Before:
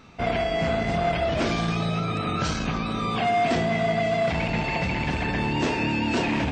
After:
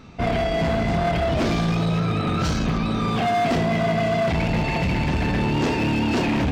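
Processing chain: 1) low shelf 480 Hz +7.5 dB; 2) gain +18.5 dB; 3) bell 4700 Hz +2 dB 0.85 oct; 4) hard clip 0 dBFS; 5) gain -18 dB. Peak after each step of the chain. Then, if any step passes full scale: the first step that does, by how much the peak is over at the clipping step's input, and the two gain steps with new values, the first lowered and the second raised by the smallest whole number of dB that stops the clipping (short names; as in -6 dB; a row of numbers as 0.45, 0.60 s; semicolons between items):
-10.0, +8.5, +8.5, 0.0, -18.0 dBFS; step 2, 8.5 dB; step 2 +9.5 dB, step 5 -9 dB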